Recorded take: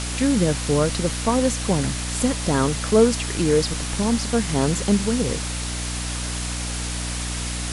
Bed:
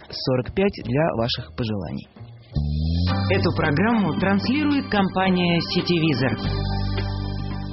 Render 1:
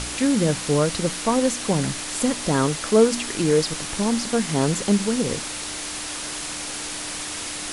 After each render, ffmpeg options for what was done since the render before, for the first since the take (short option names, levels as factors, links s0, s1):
-af "bandreject=f=60:t=h:w=4,bandreject=f=120:t=h:w=4,bandreject=f=180:t=h:w=4,bandreject=f=240:t=h:w=4"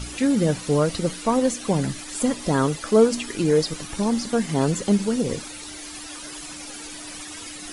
-af "afftdn=nr=13:nf=-32"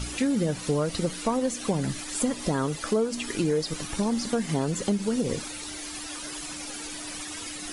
-af "acompressor=threshold=0.0794:ratio=5"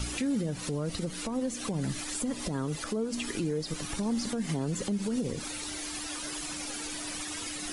-filter_complex "[0:a]acrossover=split=330[s0][s1];[s1]acompressor=threshold=0.0251:ratio=6[s2];[s0][s2]amix=inputs=2:normalize=0,alimiter=limit=0.075:level=0:latency=1:release=125"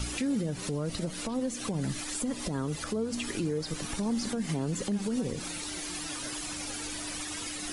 -filter_complex "[1:a]volume=0.0316[s0];[0:a][s0]amix=inputs=2:normalize=0"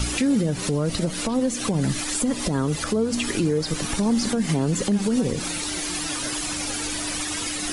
-af "volume=2.82"